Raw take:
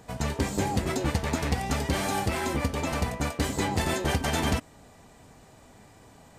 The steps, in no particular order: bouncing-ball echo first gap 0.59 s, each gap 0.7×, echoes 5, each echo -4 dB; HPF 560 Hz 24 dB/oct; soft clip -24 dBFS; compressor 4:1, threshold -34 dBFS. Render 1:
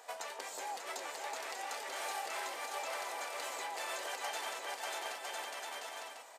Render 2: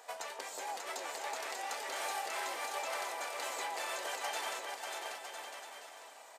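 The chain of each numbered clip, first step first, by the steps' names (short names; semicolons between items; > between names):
bouncing-ball echo > compressor > soft clip > HPF; compressor > HPF > soft clip > bouncing-ball echo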